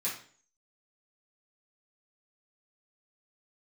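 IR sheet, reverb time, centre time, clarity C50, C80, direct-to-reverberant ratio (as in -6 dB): 0.45 s, 31 ms, 5.5 dB, 10.5 dB, -9.5 dB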